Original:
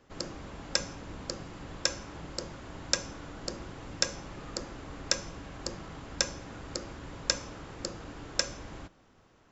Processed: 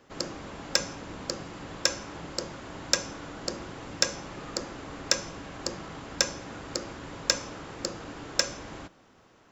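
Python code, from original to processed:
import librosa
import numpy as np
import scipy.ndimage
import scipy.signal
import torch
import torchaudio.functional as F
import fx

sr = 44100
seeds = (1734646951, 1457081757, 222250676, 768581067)

p1 = fx.low_shelf(x, sr, hz=91.0, db=-11.5)
p2 = np.clip(p1, -10.0 ** (-21.0 / 20.0), 10.0 ** (-21.0 / 20.0))
p3 = p1 + (p2 * librosa.db_to_amplitude(-8.5))
y = p3 * librosa.db_to_amplitude(2.0)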